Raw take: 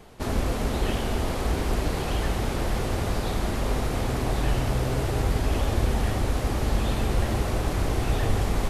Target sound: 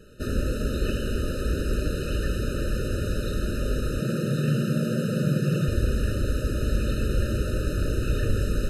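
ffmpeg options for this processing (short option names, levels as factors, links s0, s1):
-filter_complex "[0:a]asettb=1/sr,asplit=3[s0][s1][s2];[s0]atrim=end=4.004[s3];[s1]atrim=start=4:end=5.68,asetpts=PTS-STARTPTS,afade=t=in:d=0.004:c=qsin,afade=t=out:st=1.676:d=0.004:c=qsin,afreqshift=100[s4];[s2]atrim=start=5.676[s5];[s3][s4]acrossfade=d=0.004:c1=hsin:c2=qsin[s6];[s6][s5]acrossfade=d=0.004:c1=qsin:c2=hsin,afftfilt=real='re*eq(mod(floor(b*sr/1024/610),2),0)':imag='im*eq(mod(floor(b*sr/1024/610),2),0)':win_size=1024:overlap=0.75"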